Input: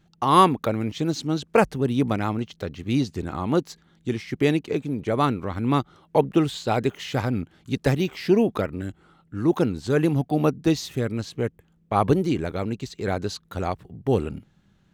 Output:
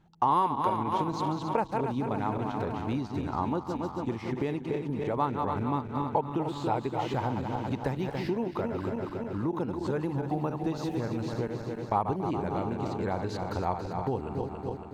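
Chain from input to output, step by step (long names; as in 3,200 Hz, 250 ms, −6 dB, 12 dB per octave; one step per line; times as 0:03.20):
feedback delay that plays each chunk backwards 140 ms, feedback 77%, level −8 dB
high-shelf EQ 2,700 Hz −9 dB
downward compressor 6 to 1, threshold −26 dBFS, peak gain reduction 14 dB
parametric band 910 Hz +11.5 dB 0.44 octaves
level −2 dB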